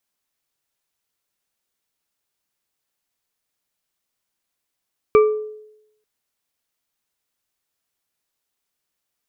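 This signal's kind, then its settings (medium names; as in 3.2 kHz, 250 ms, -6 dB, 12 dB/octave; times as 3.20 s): glass hit bar, lowest mode 428 Hz, modes 3, decay 0.83 s, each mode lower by 8 dB, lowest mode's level -7 dB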